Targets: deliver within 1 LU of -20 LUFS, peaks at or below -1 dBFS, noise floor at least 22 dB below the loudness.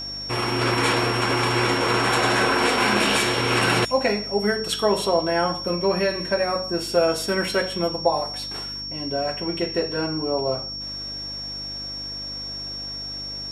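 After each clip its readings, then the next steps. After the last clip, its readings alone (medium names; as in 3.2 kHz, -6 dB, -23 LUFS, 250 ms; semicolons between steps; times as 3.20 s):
hum 50 Hz; highest harmonic 300 Hz; hum level -40 dBFS; steady tone 5.5 kHz; tone level -30 dBFS; loudness -22.5 LUFS; peak level -6.0 dBFS; loudness target -20.0 LUFS
-> de-hum 50 Hz, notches 6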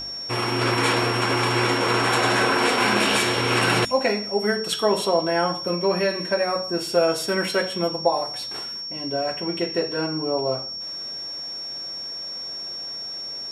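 hum not found; steady tone 5.5 kHz; tone level -30 dBFS
-> band-stop 5.5 kHz, Q 30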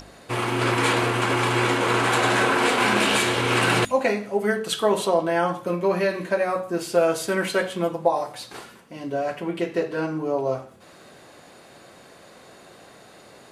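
steady tone not found; loudness -22.5 LUFS; peak level -6.5 dBFS; loudness target -20.0 LUFS
-> trim +2.5 dB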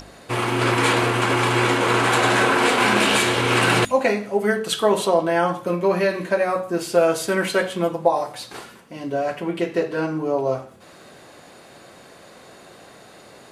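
loudness -20.0 LUFS; peak level -4.0 dBFS; noise floor -46 dBFS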